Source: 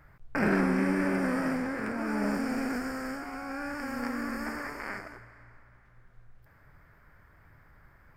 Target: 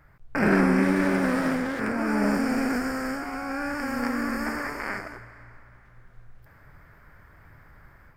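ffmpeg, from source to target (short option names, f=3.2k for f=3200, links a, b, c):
-filter_complex "[0:a]dynaudnorm=f=260:g=3:m=6dB,asettb=1/sr,asplit=3[a][b][c];[a]atrim=end=0.824[d];[b]atrim=start=0.82:end=1.8,asetpts=PTS-STARTPTS,afade=t=in:d=0.004:c=qsin,afade=t=out:st=0.976:d=0.004:c=qsin,aeval=exprs='sgn(val(0))*max(abs(val(0))-0.0133,0)':c=same[e];[c]atrim=start=1.796[f];[d][e]acrossfade=d=0.004:c1=hsin:c2=qsin[g];[g][f]acrossfade=d=0.004:c1=qsin:c2=hsin"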